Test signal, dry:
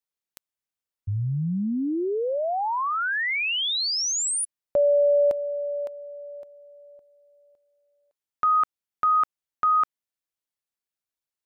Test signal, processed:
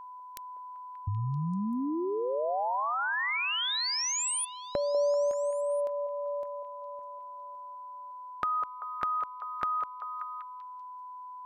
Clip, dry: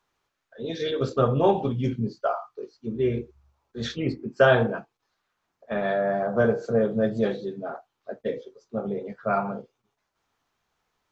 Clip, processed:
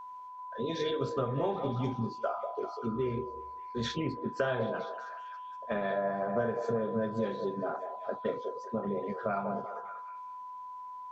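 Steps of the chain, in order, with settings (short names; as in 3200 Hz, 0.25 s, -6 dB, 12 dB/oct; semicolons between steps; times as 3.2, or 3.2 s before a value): compressor 4:1, threshold -34 dBFS; whine 1000 Hz -45 dBFS; on a send: delay with a stepping band-pass 0.194 s, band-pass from 580 Hz, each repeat 0.7 oct, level -5 dB; on the sum: gain +2.5 dB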